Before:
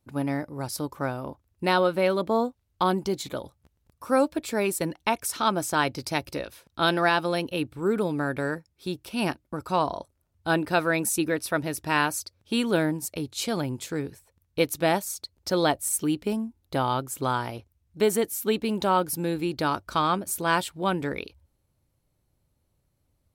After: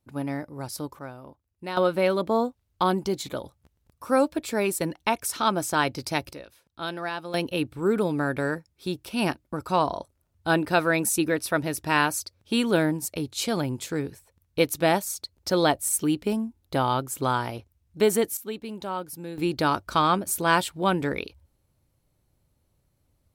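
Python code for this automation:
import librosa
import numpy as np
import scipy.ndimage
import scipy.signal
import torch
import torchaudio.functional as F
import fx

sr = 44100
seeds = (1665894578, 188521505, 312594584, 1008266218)

y = fx.gain(x, sr, db=fx.steps((0.0, -2.5), (0.99, -10.0), (1.77, 0.5), (6.33, -9.5), (7.34, 1.5), (18.37, -9.0), (19.38, 2.5)))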